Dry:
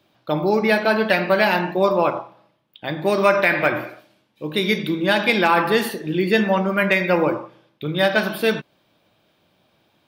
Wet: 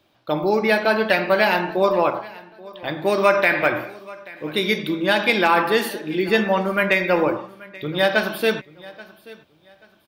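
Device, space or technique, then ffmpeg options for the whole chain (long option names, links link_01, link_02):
low shelf boost with a cut just above: -filter_complex "[0:a]lowshelf=frequency=92:gain=6.5,equalizer=frequency=160:width_type=o:width=1.1:gain=-6,asettb=1/sr,asplit=3[link_01][link_02][link_03];[link_01]atrim=end=5.634[link_04];[link_02]atrim=start=5.63:end=6.29,asetpts=PTS-STARTPTS,afade=type=in:duration=0.004:curve=qsin,afade=type=out:start_time=0.656:duration=0.004:curve=qsin,highpass=160[link_05];[link_03]atrim=start=6.286[link_06];[link_04][link_05]acrossfade=duration=0.004:curve1=hsin:curve2=qsin[link_07];[link_07][link_06]acrossfade=duration=0.004:curve1=qsin:curve2=hsin,aecho=1:1:832|1664:0.0891|0.0241"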